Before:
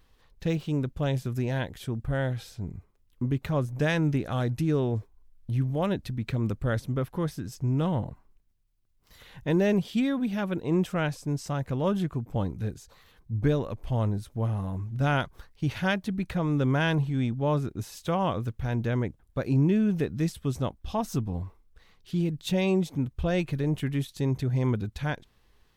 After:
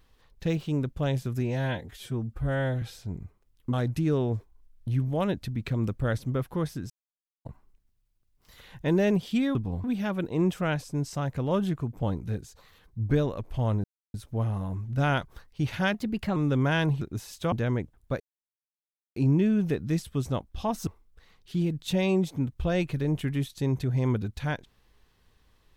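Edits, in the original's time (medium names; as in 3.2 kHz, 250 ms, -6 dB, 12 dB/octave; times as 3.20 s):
1.41–2.35 s: stretch 1.5×
3.26–4.35 s: delete
7.52–8.07 s: mute
14.17 s: insert silence 0.30 s
15.97–16.45 s: speed 114%
17.10–17.65 s: delete
18.16–18.78 s: delete
19.46 s: insert silence 0.96 s
21.17–21.46 s: move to 10.17 s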